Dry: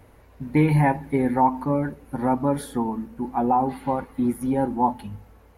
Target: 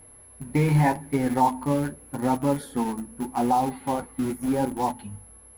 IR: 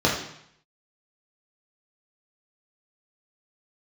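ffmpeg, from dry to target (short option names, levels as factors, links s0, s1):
-filter_complex "[0:a]aeval=exprs='val(0)+0.00631*sin(2*PI*11000*n/s)':c=same,asplit=2[s0][s1];[s1]acrusher=bits=3:mix=0:aa=0.000001,volume=0.266[s2];[s0][s2]amix=inputs=2:normalize=0,flanger=delay=6.3:depth=8.4:regen=-44:speed=0.83:shape=sinusoidal"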